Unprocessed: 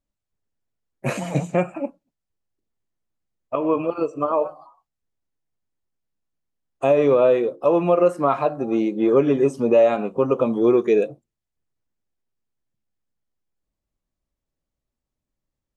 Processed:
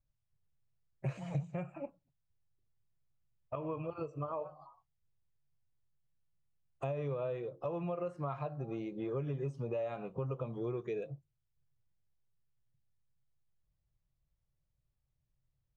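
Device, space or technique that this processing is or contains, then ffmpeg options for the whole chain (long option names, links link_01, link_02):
jukebox: -af "lowpass=5600,lowshelf=frequency=180:width_type=q:width=3:gain=8.5,acompressor=threshold=-33dB:ratio=3,volume=-6.5dB"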